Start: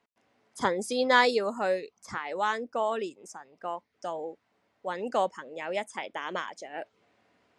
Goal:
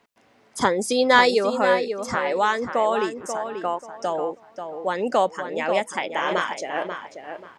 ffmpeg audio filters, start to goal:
ffmpeg -i in.wav -filter_complex "[0:a]asplit=2[link_01][link_02];[link_02]acompressor=threshold=-34dB:ratio=6,volume=2dB[link_03];[link_01][link_03]amix=inputs=2:normalize=0,asettb=1/sr,asplit=3[link_04][link_05][link_06];[link_04]atrim=end=6.154[link_07];[link_05]atrim=start=6.15:end=6.55,asetpts=PTS-STARTPTS,afade=type=in:duration=0.004:curve=qsin,afade=type=out:start_time=0.396:duration=0.004:curve=qsin,asplit=2[link_08][link_09];[link_09]adelay=29,volume=-4dB[link_10];[link_08][link_10]amix=inputs=2:normalize=0,atrim=end_sample=17640[link_11];[link_06]atrim=start=6.546[link_12];[link_07][link_11]acrossfade=duration=0.004:curve1=hsin:curve2=qsin[link_13];[link_13][link_12]acrossfade=duration=0.004:curve1=qsin:curve2=hsin,asplit=2[link_14][link_15];[link_15]adelay=537,lowpass=frequency=2600:poles=1,volume=-7.5dB,asplit=2[link_16][link_17];[link_17]adelay=537,lowpass=frequency=2600:poles=1,volume=0.26,asplit=2[link_18][link_19];[link_19]adelay=537,lowpass=frequency=2600:poles=1,volume=0.26[link_20];[link_14][link_16][link_18][link_20]amix=inputs=4:normalize=0,volume=4dB" out.wav

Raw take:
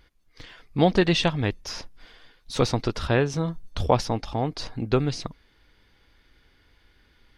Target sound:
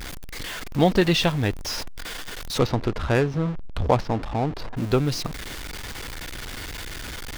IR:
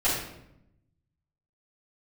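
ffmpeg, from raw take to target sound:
-filter_complex "[0:a]aeval=exprs='val(0)+0.5*0.0376*sgn(val(0))':channel_layout=same,asplit=3[link_01][link_02][link_03];[link_01]afade=type=out:start_time=2.57:duration=0.02[link_04];[link_02]adynamicsmooth=sensitivity=2.5:basefreq=1100,afade=type=in:start_time=2.57:duration=0.02,afade=type=out:start_time=4.76:duration=0.02[link_05];[link_03]afade=type=in:start_time=4.76:duration=0.02[link_06];[link_04][link_05][link_06]amix=inputs=3:normalize=0"

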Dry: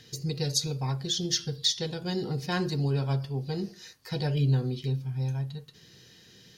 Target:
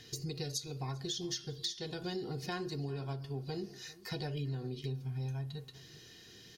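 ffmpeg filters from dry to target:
ffmpeg -i in.wav -filter_complex "[0:a]aecho=1:1:2.8:0.39,acompressor=threshold=-35dB:ratio=6,asplit=2[link_01][link_02];[link_02]adelay=396.5,volume=-19dB,highshelf=frequency=4000:gain=-8.92[link_03];[link_01][link_03]amix=inputs=2:normalize=0,volume=-1dB" out.wav

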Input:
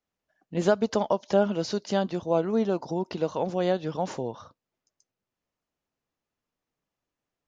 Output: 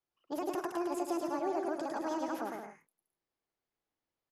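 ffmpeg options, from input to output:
ffmpeg -i in.wav -filter_complex "[0:a]equalizer=frequency=200:width_type=o:width=0.33:gain=4,equalizer=frequency=400:width_type=o:width=0.33:gain=4,equalizer=frequency=5000:width_type=o:width=0.33:gain=-11,acrossover=split=310|3000[link_01][link_02][link_03];[link_02]acompressor=threshold=-32dB:ratio=6[link_04];[link_01][link_04][link_03]amix=inputs=3:normalize=0,alimiter=limit=-20dB:level=0:latency=1,aecho=1:1:180|297|373|422.5|454.6:0.631|0.398|0.251|0.158|0.1,asetrate=76440,aresample=44100,volume=-7.5dB" out.wav

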